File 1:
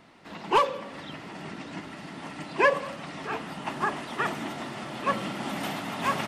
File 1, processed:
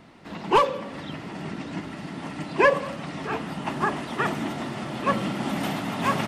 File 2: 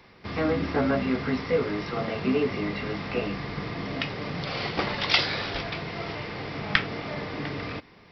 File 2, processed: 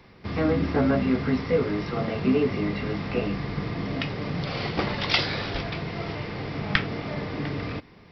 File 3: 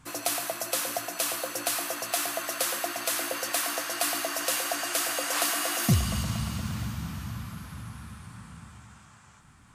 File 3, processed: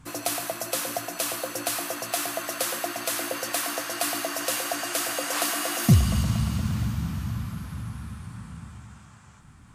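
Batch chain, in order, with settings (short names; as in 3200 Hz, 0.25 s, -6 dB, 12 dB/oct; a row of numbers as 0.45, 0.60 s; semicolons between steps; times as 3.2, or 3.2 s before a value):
low shelf 370 Hz +7 dB; match loudness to -27 LUFS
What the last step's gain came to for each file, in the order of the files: +1.5, -1.5, 0.0 dB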